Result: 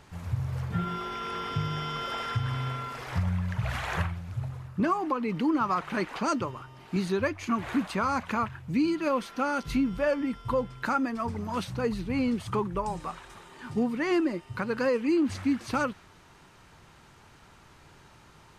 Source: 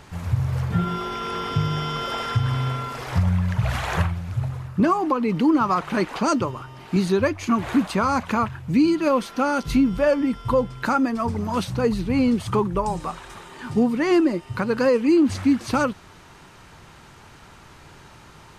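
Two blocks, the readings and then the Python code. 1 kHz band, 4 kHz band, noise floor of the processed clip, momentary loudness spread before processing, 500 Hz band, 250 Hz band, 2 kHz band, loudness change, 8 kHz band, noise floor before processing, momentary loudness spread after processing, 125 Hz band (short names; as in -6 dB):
-6.0 dB, -6.5 dB, -55 dBFS, 8 LU, -7.5 dB, -8.0 dB, -4.5 dB, -7.5 dB, -7.5 dB, -47 dBFS, 8 LU, -8.0 dB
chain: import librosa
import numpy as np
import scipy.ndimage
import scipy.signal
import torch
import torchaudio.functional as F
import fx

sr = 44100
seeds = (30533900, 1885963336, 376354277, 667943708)

y = fx.dynamic_eq(x, sr, hz=1900.0, q=0.86, threshold_db=-38.0, ratio=4.0, max_db=4)
y = y * librosa.db_to_amplitude(-8.0)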